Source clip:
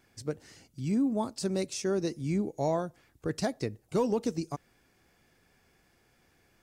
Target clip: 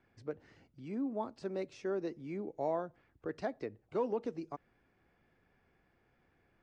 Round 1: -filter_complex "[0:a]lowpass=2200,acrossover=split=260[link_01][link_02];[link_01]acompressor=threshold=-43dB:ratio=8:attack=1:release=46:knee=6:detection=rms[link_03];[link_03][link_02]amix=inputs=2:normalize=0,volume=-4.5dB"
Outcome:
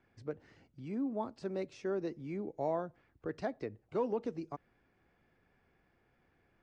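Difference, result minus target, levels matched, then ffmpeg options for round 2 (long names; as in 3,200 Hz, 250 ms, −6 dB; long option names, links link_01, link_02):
downward compressor: peak gain reduction −5.5 dB
-filter_complex "[0:a]lowpass=2200,acrossover=split=260[link_01][link_02];[link_01]acompressor=threshold=-49dB:ratio=8:attack=1:release=46:knee=6:detection=rms[link_03];[link_03][link_02]amix=inputs=2:normalize=0,volume=-4.5dB"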